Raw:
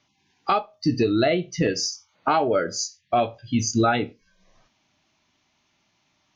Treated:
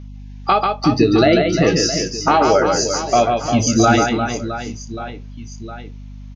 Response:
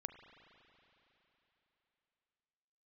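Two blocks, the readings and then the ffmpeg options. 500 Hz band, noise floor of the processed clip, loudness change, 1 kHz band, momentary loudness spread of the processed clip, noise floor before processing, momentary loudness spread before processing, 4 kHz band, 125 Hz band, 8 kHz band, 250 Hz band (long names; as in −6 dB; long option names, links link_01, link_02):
+8.0 dB, −34 dBFS, +8.0 dB, +8.0 dB, 20 LU, −69 dBFS, 8 LU, +8.0 dB, +8.5 dB, can't be measured, +8.0 dB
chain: -af "aecho=1:1:140|350|665|1138|1846:0.631|0.398|0.251|0.158|0.1,aeval=exprs='val(0)+0.0112*(sin(2*PI*50*n/s)+sin(2*PI*2*50*n/s)/2+sin(2*PI*3*50*n/s)/3+sin(2*PI*4*50*n/s)/4+sin(2*PI*5*50*n/s)/5)':channel_layout=same,volume=6dB"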